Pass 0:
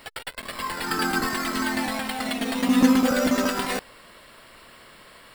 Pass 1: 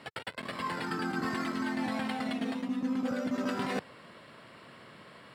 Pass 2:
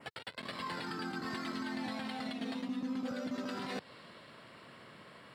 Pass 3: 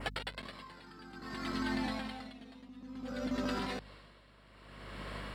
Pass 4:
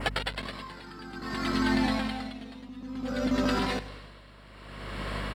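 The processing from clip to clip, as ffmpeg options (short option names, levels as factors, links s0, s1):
-af "highpass=f=120:w=0.5412,highpass=f=120:w=1.3066,aemphasis=mode=reproduction:type=bsi,areverse,acompressor=threshold=0.0501:ratio=12,areverse,volume=0.708"
-af "adynamicequalizer=threshold=0.00112:dfrequency=4100:dqfactor=1.7:tfrequency=4100:tqfactor=1.7:attack=5:release=100:ratio=0.375:range=3.5:mode=boostabove:tftype=bell,alimiter=level_in=1.5:limit=0.0631:level=0:latency=1:release=138,volume=0.668,volume=0.75"
-af "acompressor=threshold=0.00794:ratio=4,aeval=exprs='val(0)+0.00178*(sin(2*PI*50*n/s)+sin(2*PI*2*50*n/s)/2+sin(2*PI*3*50*n/s)/3+sin(2*PI*4*50*n/s)/4+sin(2*PI*5*50*n/s)/5)':c=same,aeval=exprs='val(0)*pow(10,-19*(0.5-0.5*cos(2*PI*0.58*n/s))/20)':c=same,volume=3.16"
-af "aecho=1:1:100|200|300|400:0.158|0.0666|0.028|0.0117,volume=2.66"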